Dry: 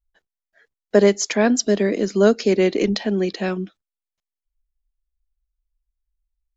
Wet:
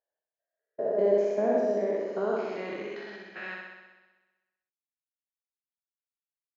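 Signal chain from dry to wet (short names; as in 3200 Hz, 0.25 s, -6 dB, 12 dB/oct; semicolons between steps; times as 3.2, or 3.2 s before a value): stepped spectrum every 0.2 s; band-pass sweep 600 Hz -> 2400 Hz, 1.52–3.9; gate -42 dBFS, range -13 dB; on a send: flutter echo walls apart 10.9 m, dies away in 1.2 s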